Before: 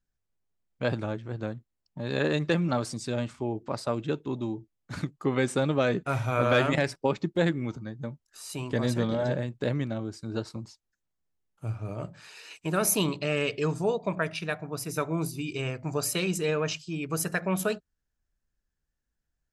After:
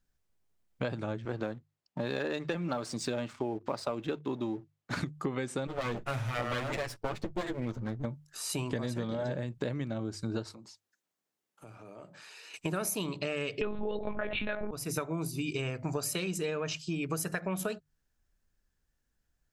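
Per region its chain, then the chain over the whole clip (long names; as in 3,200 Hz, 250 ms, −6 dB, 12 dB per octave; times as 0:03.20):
0:01.25–0:05.00: high-pass filter 280 Hz 6 dB per octave + high-shelf EQ 7,800 Hz −11 dB + leveller curve on the samples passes 1
0:05.67–0:08.05: lower of the sound and its delayed copy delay 8.8 ms + one half of a high-frequency compander decoder only
0:10.53–0:12.54: high-pass filter 250 Hz + downward compressor 3 to 1, threshold −55 dBFS
0:13.61–0:14.71: comb filter 4.7 ms, depth 79% + one-pitch LPC vocoder at 8 kHz 210 Hz + envelope flattener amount 70%
whole clip: mains-hum notches 50/100/150 Hz; downward compressor 12 to 1, threshold −35 dBFS; level +5 dB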